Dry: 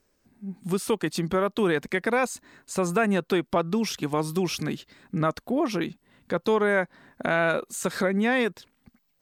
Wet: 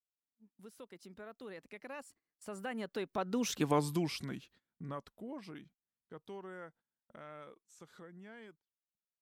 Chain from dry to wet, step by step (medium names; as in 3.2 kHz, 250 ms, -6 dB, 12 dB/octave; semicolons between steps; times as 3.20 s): Doppler pass-by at 3.68 s, 37 m/s, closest 7.9 m; gate -60 dBFS, range -21 dB; trim -3.5 dB